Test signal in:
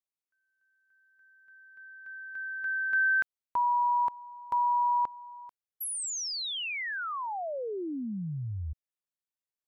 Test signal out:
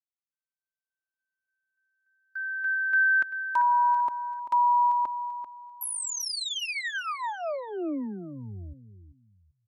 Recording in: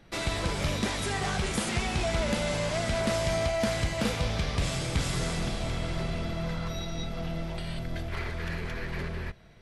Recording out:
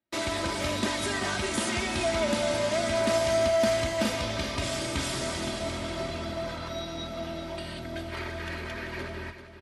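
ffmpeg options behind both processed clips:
ffmpeg -i in.wav -af "agate=range=-32dB:threshold=-41dB:ratio=16:release=28:detection=rms,highpass=110,aecho=1:1:3.2:0.71,aecho=1:1:390|780|1170:0.282|0.0733|0.0191" out.wav

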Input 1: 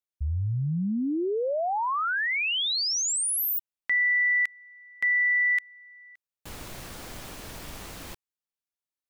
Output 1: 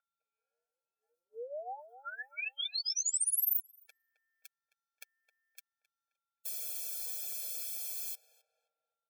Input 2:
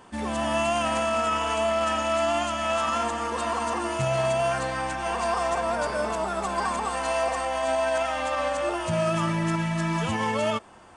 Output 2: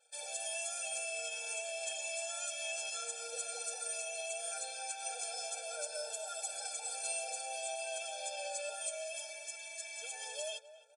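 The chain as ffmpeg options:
ffmpeg -i in.wav -filter_complex "[0:a]crystalizer=i=2.5:c=0,aecho=1:1:6.5:0.66,aeval=exprs='val(0)+0.0112*sin(2*PI*1200*n/s)':channel_layout=same,equalizer=frequency=920:width=0.55:gain=-7,anlmdn=0.0251,bandreject=frequency=1600:width=5.9,acompressor=threshold=-31dB:ratio=3:attack=11:release=757:knee=6:detection=peak,highshelf=frequency=4400:gain=8,asplit=2[link_01][link_02];[link_02]adelay=264,lowpass=frequency=1500:poles=1,volume=-13dB,asplit=2[link_03][link_04];[link_04]adelay=264,lowpass=frequency=1500:poles=1,volume=0.45,asplit=2[link_05][link_06];[link_06]adelay=264,lowpass=frequency=1500:poles=1,volume=0.45,asplit=2[link_07][link_08];[link_08]adelay=264,lowpass=frequency=1500:poles=1,volume=0.45[link_09];[link_03][link_05][link_07][link_09]amix=inputs=4:normalize=0[link_10];[link_01][link_10]amix=inputs=2:normalize=0,afftfilt=real='re*eq(mod(floor(b*sr/1024/450),2),1)':imag='im*eq(mod(floor(b*sr/1024/450),2),1)':win_size=1024:overlap=0.75,volume=-7dB" out.wav

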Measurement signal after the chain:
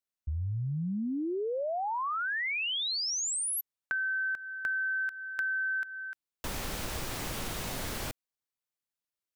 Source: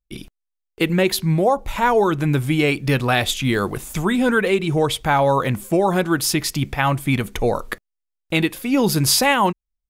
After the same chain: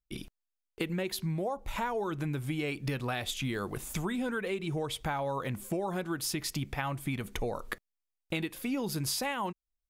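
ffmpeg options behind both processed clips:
ffmpeg -i in.wav -af "acompressor=threshold=-24dB:ratio=6,volume=-6.5dB" out.wav

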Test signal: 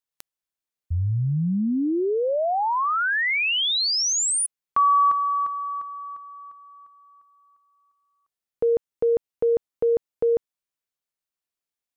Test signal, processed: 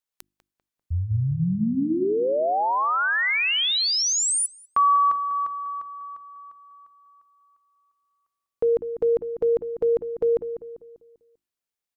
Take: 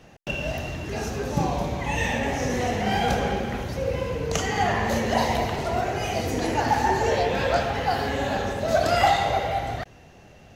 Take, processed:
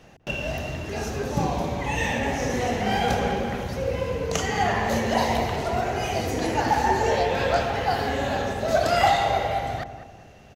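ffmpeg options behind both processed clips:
ffmpeg -i in.wav -filter_complex "[0:a]bandreject=frequency=50:width_type=h:width=6,bandreject=frequency=100:width_type=h:width=6,bandreject=frequency=150:width_type=h:width=6,bandreject=frequency=200:width_type=h:width=6,bandreject=frequency=250:width_type=h:width=6,bandreject=frequency=300:width_type=h:width=6,bandreject=frequency=350:width_type=h:width=6,asplit=2[link_01][link_02];[link_02]adelay=197,lowpass=frequency=1500:poles=1,volume=-10dB,asplit=2[link_03][link_04];[link_04]adelay=197,lowpass=frequency=1500:poles=1,volume=0.43,asplit=2[link_05][link_06];[link_06]adelay=197,lowpass=frequency=1500:poles=1,volume=0.43,asplit=2[link_07][link_08];[link_08]adelay=197,lowpass=frequency=1500:poles=1,volume=0.43,asplit=2[link_09][link_10];[link_10]adelay=197,lowpass=frequency=1500:poles=1,volume=0.43[link_11];[link_03][link_05][link_07][link_09][link_11]amix=inputs=5:normalize=0[link_12];[link_01][link_12]amix=inputs=2:normalize=0" out.wav

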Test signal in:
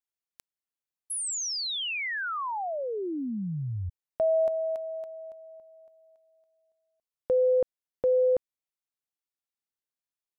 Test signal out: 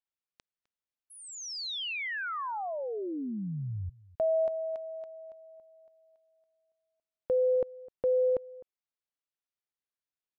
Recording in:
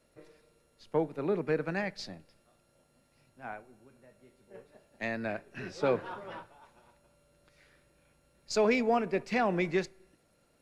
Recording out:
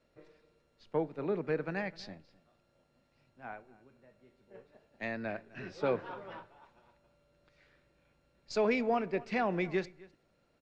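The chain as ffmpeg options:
ffmpeg -i in.wav -filter_complex "[0:a]lowpass=4800,asplit=2[link_01][link_02];[link_02]adelay=256.6,volume=-21dB,highshelf=frequency=4000:gain=-5.77[link_03];[link_01][link_03]amix=inputs=2:normalize=0,volume=-3dB" out.wav

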